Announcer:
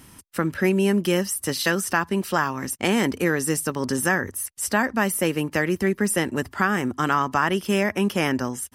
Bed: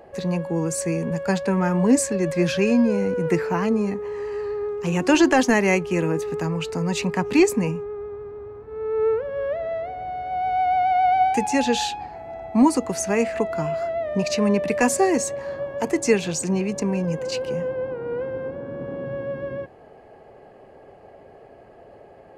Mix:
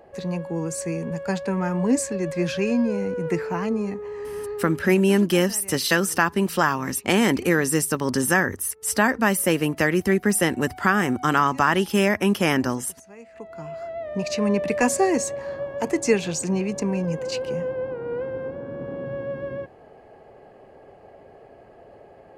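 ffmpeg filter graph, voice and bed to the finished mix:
-filter_complex "[0:a]adelay=4250,volume=2dB[a];[1:a]volume=19dB,afade=t=out:st=4.55:d=0.47:silence=0.1,afade=t=in:st=13.27:d=1.36:silence=0.0749894[b];[a][b]amix=inputs=2:normalize=0"

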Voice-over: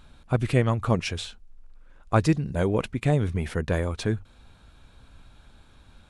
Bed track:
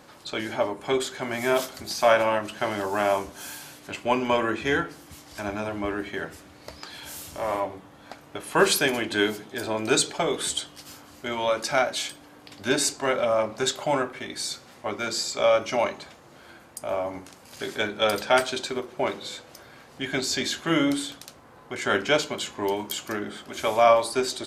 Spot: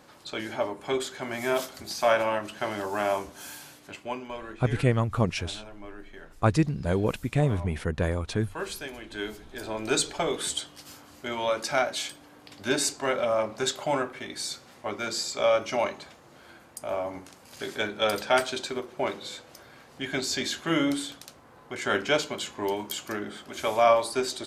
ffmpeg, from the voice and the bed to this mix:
-filter_complex "[0:a]adelay=4300,volume=-1.5dB[a];[1:a]volume=9dB,afade=t=out:st=3.61:d=0.68:silence=0.266073,afade=t=in:st=9.01:d=1.14:silence=0.237137[b];[a][b]amix=inputs=2:normalize=0"

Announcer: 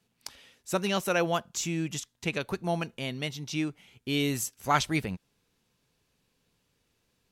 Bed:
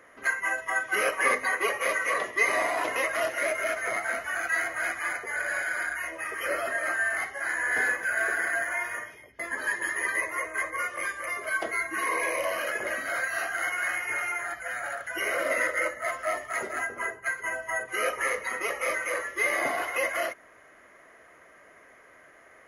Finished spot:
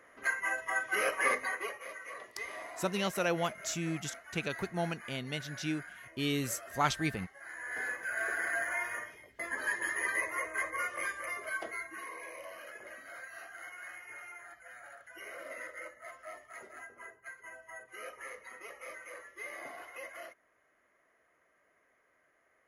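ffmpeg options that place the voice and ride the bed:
-filter_complex "[0:a]adelay=2100,volume=-4.5dB[a];[1:a]volume=8.5dB,afade=t=out:st=1.27:d=0.56:silence=0.223872,afade=t=in:st=7.44:d=1.25:silence=0.211349,afade=t=out:st=11.07:d=1.06:silence=0.223872[b];[a][b]amix=inputs=2:normalize=0"

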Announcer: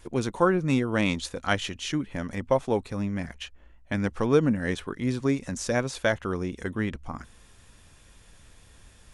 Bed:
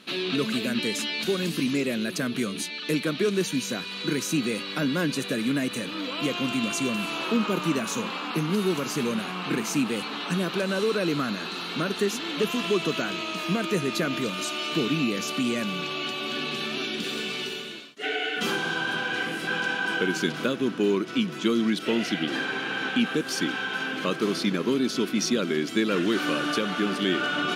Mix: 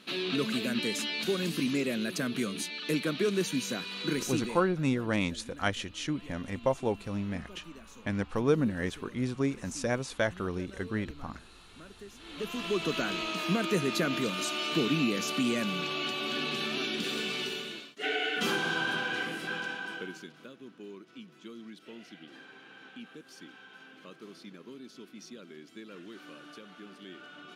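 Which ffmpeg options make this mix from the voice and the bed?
-filter_complex "[0:a]adelay=4150,volume=-4.5dB[a];[1:a]volume=16.5dB,afade=t=out:st=4.13:d=0.62:silence=0.112202,afade=t=in:st=12.15:d=0.94:silence=0.0944061,afade=t=out:st=18.82:d=1.47:silence=0.1[b];[a][b]amix=inputs=2:normalize=0"

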